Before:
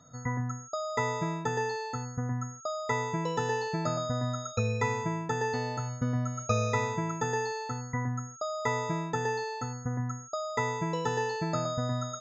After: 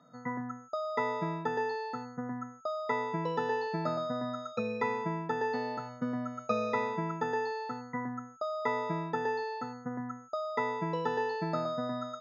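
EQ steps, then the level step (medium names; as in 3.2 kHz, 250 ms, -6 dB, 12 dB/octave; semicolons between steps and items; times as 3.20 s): elliptic band-pass 180–5000 Hz, stop band 40 dB; treble shelf 3.3 kHz -9 dB; 0.0 dB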